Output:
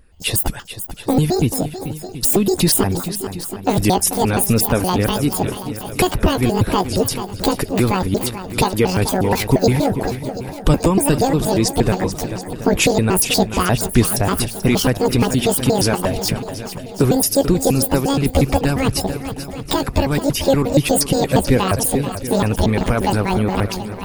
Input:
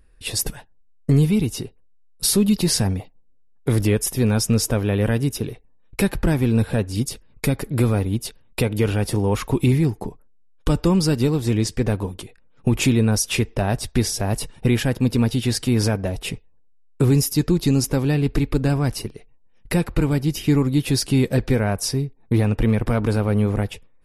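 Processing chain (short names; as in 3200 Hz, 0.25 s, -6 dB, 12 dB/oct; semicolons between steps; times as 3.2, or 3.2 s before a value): trilling pitch shifter +10.5 st, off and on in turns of 0.118 s; harmonic-percussive split harmonic -9 dB; swung echo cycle 0.727 s, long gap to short 1.5:1, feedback 41%, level -13 dB; wow and flutter 29 cents; in parallel at -2 dB: limiter -20 dBFS, peak gain reduction 11.5 dB; on the sum: gain +4.5 dB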